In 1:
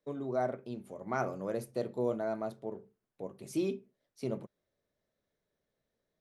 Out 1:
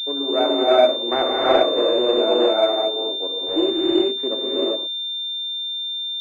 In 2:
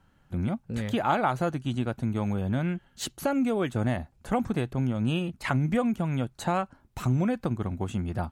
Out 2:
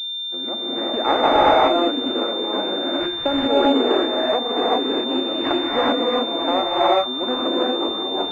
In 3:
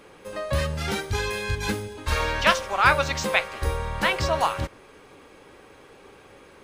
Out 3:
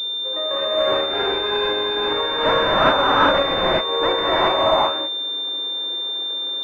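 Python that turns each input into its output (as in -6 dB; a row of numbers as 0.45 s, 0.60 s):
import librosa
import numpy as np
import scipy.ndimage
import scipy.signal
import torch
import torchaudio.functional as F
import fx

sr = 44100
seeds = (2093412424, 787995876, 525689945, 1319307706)

p1 = fx.tracing_dist(x, sr, depth_ms=0.36)
p2 = scipy.signal.sosfilt(scipy.signal.butter(8, 280.0, 'highpass', fs=sr, output='sos'), p1)
p3 = fx.rev_gated(p2, sr, seeds[0], gate_ms=430, shape='rising', drr_db=-6.5)
p4 = (np.mod(10.0 ** (11.0 / 20.0) * p3 + 1.0, 2.0) - 1.0) / 10.0 ** (11.0 / 20.0)
p5 = p3 + F.gain(torch.from_numpy(p4), -7.0).numpy()
p6 = fx.pwm(p5, sr, carrier_hz=3600.0)
y = p6 * 10.0 ** (-20 / 20.0) / np.sqrt(np.mean(np.square(p6)))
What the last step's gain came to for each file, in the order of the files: +7.5 dB, +2.0 dB, -1.5 dB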